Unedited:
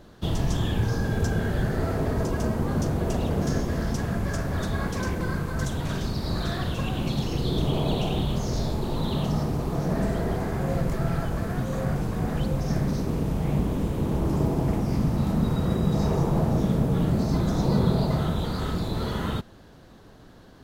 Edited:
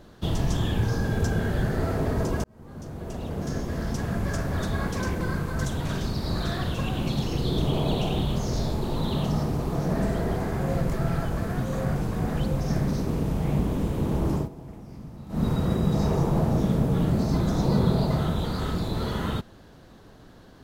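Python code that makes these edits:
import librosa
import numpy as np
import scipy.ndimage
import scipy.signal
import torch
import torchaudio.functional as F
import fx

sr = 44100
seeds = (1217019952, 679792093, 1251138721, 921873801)

y = fx.edit(x, sr, fx.fade_in_span(start_s=2.44, length_s=1.82),
    fx.fade_down_up(start_s=14.29, length_s=1.2, db=-17.0, fade_s=0.2, curve='qsin'), tone=tone)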